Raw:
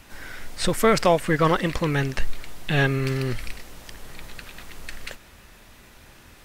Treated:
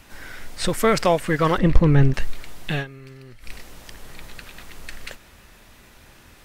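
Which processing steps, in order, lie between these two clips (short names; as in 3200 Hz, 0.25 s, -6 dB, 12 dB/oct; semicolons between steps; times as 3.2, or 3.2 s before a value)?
1.58–2.14 tilt -3.5 dB/oct; 2.71–3.54 dip -17.5 dB, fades 0.14 s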